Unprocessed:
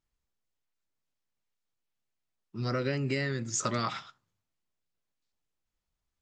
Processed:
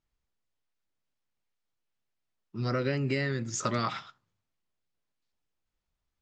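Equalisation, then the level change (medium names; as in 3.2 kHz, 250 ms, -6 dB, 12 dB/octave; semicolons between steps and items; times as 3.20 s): distance through air 61 m; +1.5 dB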